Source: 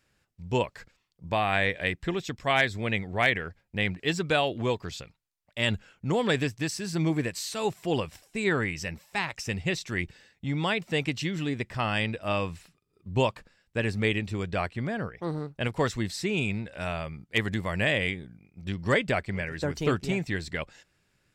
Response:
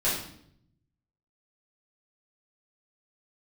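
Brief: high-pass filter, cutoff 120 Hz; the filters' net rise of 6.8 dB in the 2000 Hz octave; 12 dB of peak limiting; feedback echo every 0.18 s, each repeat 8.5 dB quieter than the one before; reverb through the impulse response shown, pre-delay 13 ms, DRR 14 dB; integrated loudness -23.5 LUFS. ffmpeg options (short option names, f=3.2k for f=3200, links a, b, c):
-filter_complex "[0:a]highpass=120,equalizer=f=2k:t=o:g=8,alimiter=limit=-15.5dB:level=0:latency=1,aecho=1:1:180|360|540|720:0.376|0.143|0.0543|0.0206,asplit=2[a][b];[1:a]atrim=start_sample=2205,adelay=13[c];[b][c]afir=irnorm=-1:irlink=0,volume=-25dB[d];[a][d]amix=inputs=2:normalize=0,volume=5dB"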